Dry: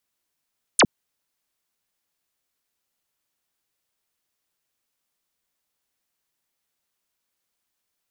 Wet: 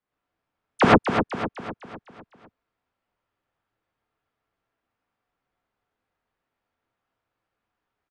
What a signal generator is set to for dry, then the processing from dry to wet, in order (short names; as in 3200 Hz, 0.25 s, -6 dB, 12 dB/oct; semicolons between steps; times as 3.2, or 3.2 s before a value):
laser zap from 11000 Hz, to 130 Hz, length 0.06 s sine, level -11.5 dB
LPF 1600 Hz 12 dB/oct; on a send: feedback echo 0.252 s, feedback 50%, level -7.5 dB; on the sum: non-linear reverb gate 0.14 s rising, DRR -6 dB